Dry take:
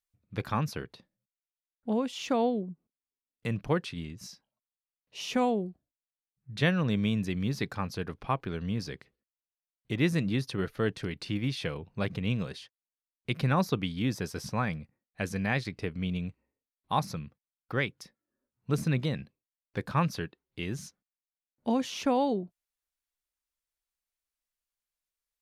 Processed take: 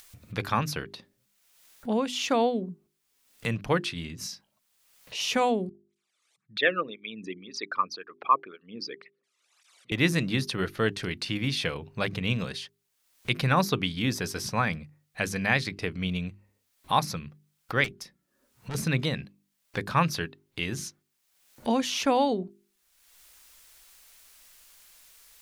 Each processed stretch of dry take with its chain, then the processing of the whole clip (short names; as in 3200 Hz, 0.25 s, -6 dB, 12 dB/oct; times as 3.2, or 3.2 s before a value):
5.69–9.92 formant sharpening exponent 2 + speaker cabinet 360–9100 Hz, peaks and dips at 1200 Hz +8 dB, 2300 Hz +7 dB, 3600 Hz +4 dB + tape flanging out of phase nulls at 1.9 Hz, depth 1.4 ms
17.84–18.75 notches 60/120/180/240/300/360 Hz + tube stage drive 34 dB, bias 0.5
whole clip: tilt shelf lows -3.5 dB; notches 50/100/150/200/250/300/350/400 Hz; upward compressor, threshold -38 dBFS; gain +5 dB